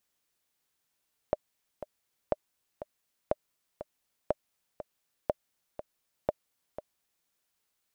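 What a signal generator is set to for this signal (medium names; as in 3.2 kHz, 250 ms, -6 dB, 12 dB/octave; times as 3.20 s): metronome 121 bpm, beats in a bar 2, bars 6, 604 Hz, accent 12.5 dB -12.5 dBFS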